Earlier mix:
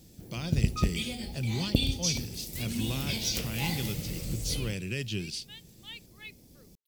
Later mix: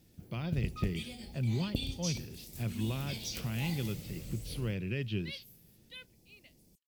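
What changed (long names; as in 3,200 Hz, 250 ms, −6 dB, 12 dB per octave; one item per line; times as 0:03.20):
speech: add high-frequency loss of the air 340 metres
first sound −9.0 dB
second sound: entry +2.70 s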